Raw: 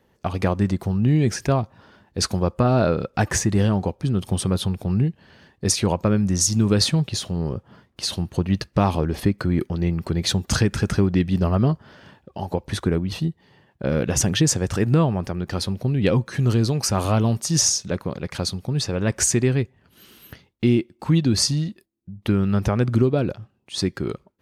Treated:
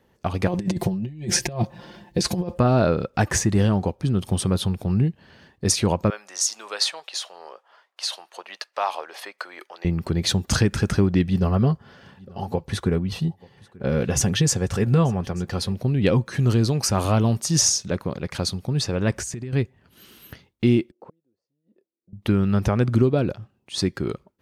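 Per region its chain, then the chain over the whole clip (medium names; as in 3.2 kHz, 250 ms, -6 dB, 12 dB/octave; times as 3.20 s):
0.47–2.58 s: peaking EQ 1.3 kHz -13 dB 0.37 oct + comb 5.7 ms, depth 92% + compressor with a negative ratio -23 dBFS, ratio -0.5
6.10–9.85 s: high-pass 650 Hz 24 dB/octave + treble shelf 9.3 kHz -8 dB
11.27–15.73 s: comb of notches 310 Hz + delay 886 ms -24 dB
19.13–19.53 s: bass shelf 170 Hz +7.5 dB + compression 20:1, threshold -27 dBFS
20.91–22.13 s: inverted gate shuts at -16 dBFS, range -39 dB + band-pass filter 490 Hz, Q 3.3
whole clip: none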